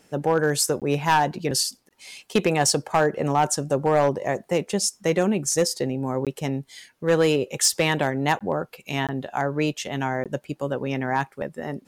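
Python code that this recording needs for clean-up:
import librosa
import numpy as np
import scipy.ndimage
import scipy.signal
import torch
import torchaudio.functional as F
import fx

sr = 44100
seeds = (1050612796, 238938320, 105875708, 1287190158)

y = fx.fix_declip(x, sr, threshold_db=-12.0)
y = fx.fix_interpolate(y, sr, at_s=(0.8, 1.89, 6.25, 8.39, 9.07, 10.24), length_ms=17.0)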